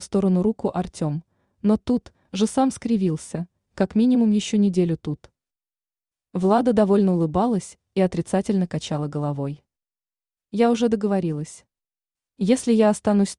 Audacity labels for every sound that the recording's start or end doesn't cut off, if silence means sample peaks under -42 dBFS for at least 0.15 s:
1.630000	2.080000	sound
2.330000	3.450000	sound
3.780000	5.250000	sound
6.340000	7.730000	sound
7.960000	9.550000	sound
10.530000	11.600000	sound